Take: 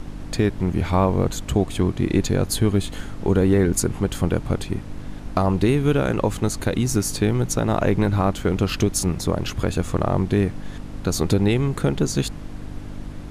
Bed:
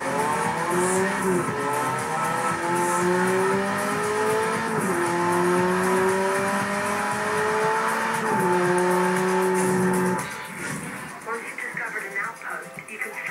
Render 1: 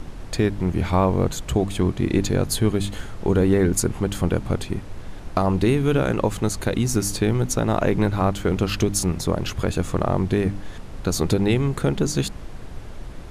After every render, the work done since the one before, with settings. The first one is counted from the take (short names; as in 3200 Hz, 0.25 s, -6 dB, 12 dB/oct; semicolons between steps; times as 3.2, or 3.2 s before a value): de-hum 50 Hz, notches 6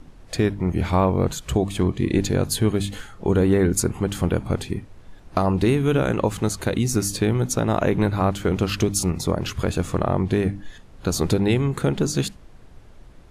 noise print and reduce 11 dB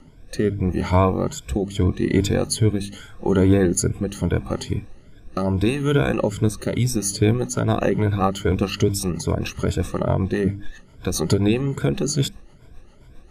moving spectral ripple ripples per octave 1.7, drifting +2.4 Hz, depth 15 dB; rotary speaker horn 0.8 Hz, later 7.5 Hz, at 6.53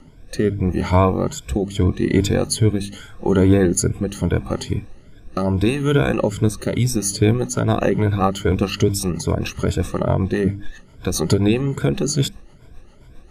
gain +2 dB